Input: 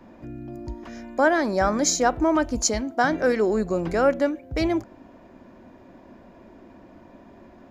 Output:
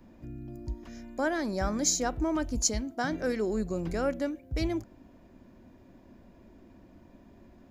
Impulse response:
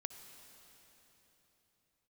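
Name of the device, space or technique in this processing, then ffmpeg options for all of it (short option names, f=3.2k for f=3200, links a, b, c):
smiley-face EQ: -af "lowshelf=f=110:g=6.5,equalizer=f=920:t=o:w=2.8:g=-7,highshelf=f=9k:g=6.5,volume=-5dB"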